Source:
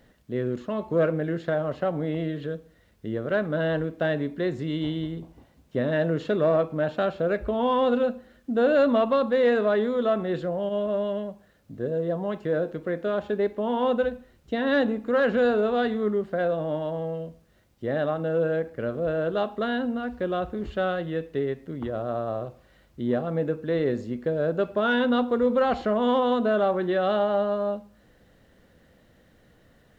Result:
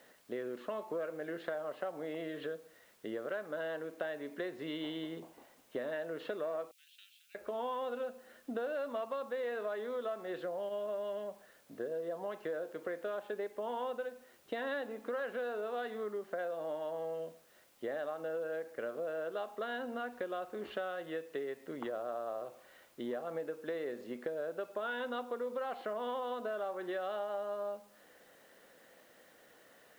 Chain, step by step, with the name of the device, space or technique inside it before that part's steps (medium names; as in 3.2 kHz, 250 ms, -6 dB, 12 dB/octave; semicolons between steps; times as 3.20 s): baby monitor (band-pass 470–3500 Hz; compression 6:1, threshold -38 dBFS, peak gain reduction 18 dB; white noise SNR 29 dB); 6.71–7.35 s: steep high-pass 2.6 kHz 36 dB/octave; trim +1.5 dB